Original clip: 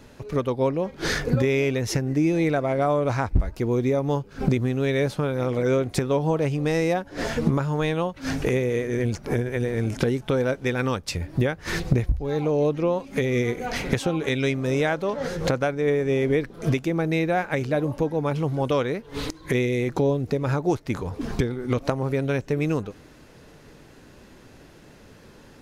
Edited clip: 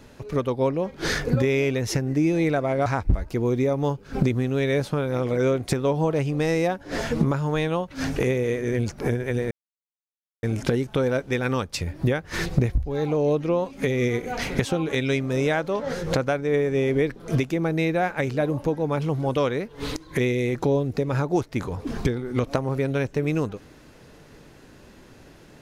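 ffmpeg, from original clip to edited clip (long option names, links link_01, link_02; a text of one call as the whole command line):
ffmpeg -i in.wav -filter_complex "[0:a]asplit=3[link_01][link_02][link_03];[link_01]atrim=end=2.862[link_04];[link_02]atrim=start=3.118:end=9.77,asetpts=PTS-STARTPTS,afade=type=out:start_time=6.648:duration=0.004:curve=hsin,apad=pad_dur=0.92[link_05];[link_03]atrim=start=9.77,asetpts=PTS-STARTPTS,afade=type=in:duration=0.004:curve=hsin[link_06];[link_05][link_06]concat=n=2:v=0:a=1[link_07];[link_04][link_07]acrossfade=duration=0.004:curve1=hsin:curve2=hsin" out.wav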